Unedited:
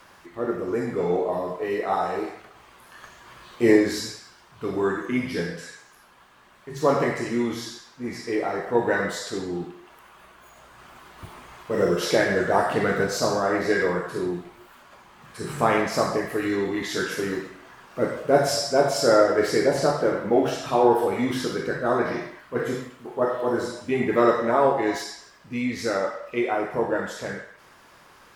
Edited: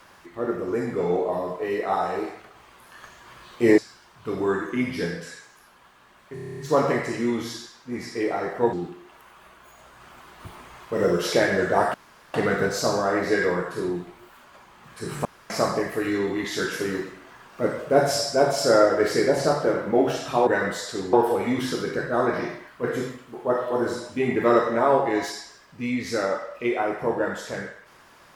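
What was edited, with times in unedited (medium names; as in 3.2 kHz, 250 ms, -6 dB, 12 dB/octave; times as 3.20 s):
3.78–4.14 s: delete
6.70 s: stutter 0.03 s, 9 plays
8.85–9.51 s: move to 20.85 s
12.72 s: insert room tone 0.40 s
15.63–15.88 s: room tone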